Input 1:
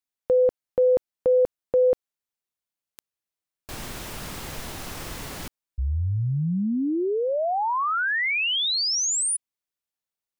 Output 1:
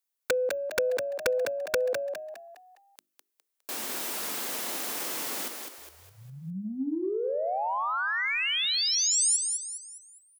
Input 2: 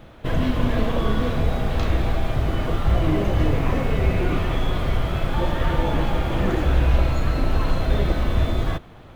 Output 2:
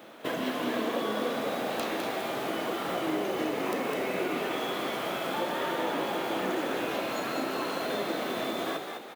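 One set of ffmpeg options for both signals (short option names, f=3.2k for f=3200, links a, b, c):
-filter_complex "[0:a]highpass=f=230:w=0.5412,highpass=f=230:w=1.3066,bandreject=f=50:t=h:w=6,bandreject=f=100:t=h:w=6,bandreject=f=150:t=h:w=6,bandreject=f=200:t=h:w=6,bandreject=f=250:t=h:w=6,bandreject=f=300:t=h:w=6,bandreject=f=350:t=h:w=6,acompressor=threshold=-35dB:ratio=2:attack=69:release=374:knee=6:detection=peak,crystalizer=i=1:c=0,aeval=exprs='(mod(8.41*val(0)+1,2)-1)/8.41':c=same,aeval=exprs='0.119*(cos(1*acos(clip(val(0)/0.119,-1,1)))-cos(1*PI/2))+0.00075*(cos(7*acos(clip(val(0)/0.119,-1,1)))-cos(7*PI/2))':c=same,asplit=6[a][b][c][d][e][f];[b]adelay=205,afreqshift=58,volume=-5.5dB[g];[c]adelay=410,afreqshift=116,volume=-13.2dB[h];[d]adelay=615,afreqshift=174,volume=-21dB[i];[e]adelay=820,afreqshift=232,volume=-28.7dB[j];[f]adelay=1025,afreqshift=290,volume=-36.5dB[k];[a][g][h][i][j][k]amix=inputs=6:normalize=0"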